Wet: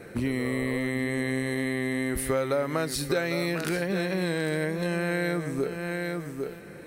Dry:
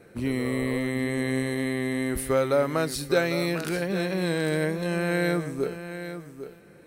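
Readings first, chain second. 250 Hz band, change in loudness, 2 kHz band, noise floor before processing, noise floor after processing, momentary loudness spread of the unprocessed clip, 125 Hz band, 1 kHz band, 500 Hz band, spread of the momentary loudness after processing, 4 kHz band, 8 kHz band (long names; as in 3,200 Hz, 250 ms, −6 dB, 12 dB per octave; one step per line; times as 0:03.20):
−1.5 dB, −2.0 dB, 0.0 dB, −51 dBFS, −44 dBFS, 12 LU, −1.5 dB, −2.0 dB, −2.5 dB, 4 LU, −1.0 dB, 0.0 dB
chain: parametric band 1,900 Hz +3.5 dB 0.38 octaves
downward compressor 3 to 1, threshold −35 dBFS, peak gain reduction 13 dB
level +7.5 dB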